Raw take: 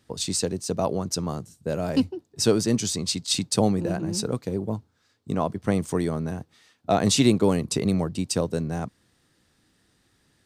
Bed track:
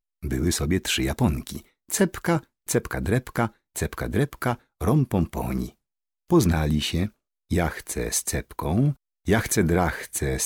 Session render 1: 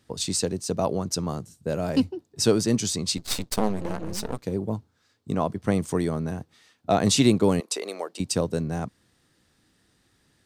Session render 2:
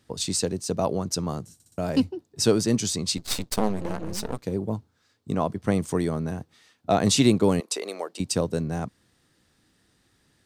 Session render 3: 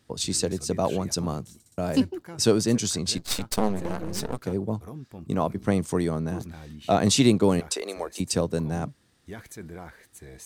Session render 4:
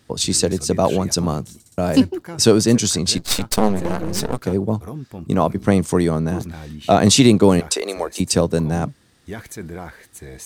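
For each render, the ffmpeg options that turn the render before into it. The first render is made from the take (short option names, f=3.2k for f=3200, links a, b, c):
-filter_complex "[0:a]asettb=1/sr,asplit=3[a][b][c];[a]atrim=end=3.174[d];[b]atrim=start=3.17:end=4.43,asetpts=PTS-STARTPTS,afade=t=in:d=0.004:c=qsin,afade=t=out:st=1.256:d=0.004:c=qsin,aeval=exprs='max(val(0),0)':c=same[e];[c]atrim=start=4.426[f];[d][e]acrossfade=d=0.004:c1=hsin:c2=qsin[g];[g][f]acrossfade=d=0.004:c1=qsin:c2=hsin,asettb=1/sr,asplit=3[h][i][j];[h]atrim=end=7.604[k];[i]atrim=start=7.6:end=8.2,asetpts=PTS-STARTPTS,afade=t=in:d=0.004:c=qsin,afade=t=out:st=0.596:d=0.004:c=qsin,highpass=f=430:w=0.5412,highpass=f=430:w=1.3066[l];[j]atrim=start=8.196[m];[k][l]acrossfade=d=0.004:c1=hsin:c2=qsin[n];[n][m]acrossfade=d=0.004:c1=qsin:c2=hsin"
-filter_complex "[0:a]asplit=5[a][b][c][d][e];[a]atrim=end=1.602[f];[b]atrim=start=1.538:end=1.602[g];[c]atrim=start=1.538:end=1.602[h];[d]atrim=start=1.538:end=1.602[i];[e]atrim=start=1.778[j];[f][g]acrossfade=d=0.004:c1=hsin:c2=hsin[k];[k][h]acrossfade=d=0.004:c1=hsin:c2=hsin[l];[l][i]acrossfade=d=0.004:c1=hsin:c2=hsin[m];[m][j]acrossfade=d=0.004:c1=hsin:c2=hsin"
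-filter_complex "[1:a]volume=-19.5dB[a];[0:a][a]amix=inputs=2:normalize=0"
-af "volume=8dB,alimiter=limit=-1dB:level=0:latency=1"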